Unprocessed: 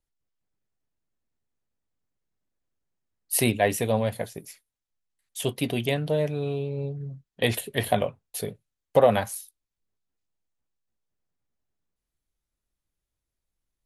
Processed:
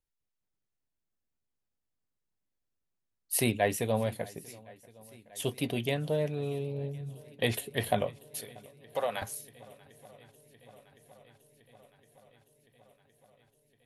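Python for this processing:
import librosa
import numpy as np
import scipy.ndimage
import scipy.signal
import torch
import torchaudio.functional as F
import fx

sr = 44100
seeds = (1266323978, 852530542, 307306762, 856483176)

y = fx.highpass(x, sr, hz=1500.0, slope=6, at=(8.4, 9.22))
y = fx.echo_swing(y, sr, ms=1063, ratio=1.5, feedback_pct=67, wet_db=-24)
y = F.gain(torch.from_numpy(y), -5.0).numpy()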